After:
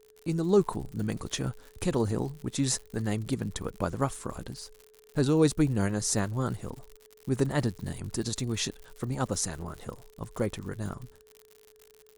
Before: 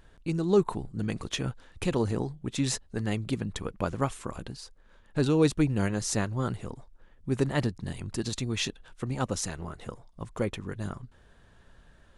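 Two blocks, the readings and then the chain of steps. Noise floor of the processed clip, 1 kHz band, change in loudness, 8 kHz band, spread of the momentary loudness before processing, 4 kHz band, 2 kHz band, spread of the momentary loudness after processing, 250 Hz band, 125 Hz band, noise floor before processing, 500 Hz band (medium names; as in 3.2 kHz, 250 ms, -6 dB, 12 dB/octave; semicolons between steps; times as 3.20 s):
-59 dBFS, -0.5 dB, 0.0 dB, +3.0 dB, 17 LU, -1.0 dB, -2.0 dB, 17 LU, 0.0 dB, 0.0 dB, -58 dBFS, 0.0 dB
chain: peaking EQ 2.7 kHz -6 dB 0.81 oct; gate with hold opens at -44 dBFS; whistle 430 Hz -57 dBFS; crackle 95 per s -41 dBFS; treble shelf 7.4 kHz +7 dB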